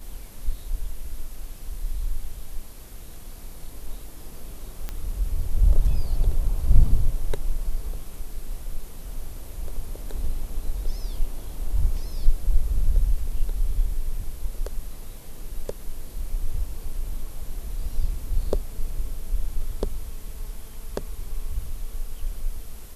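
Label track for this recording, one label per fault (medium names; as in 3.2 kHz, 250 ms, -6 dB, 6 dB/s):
4.890000	4.890000	pop -16 dBFS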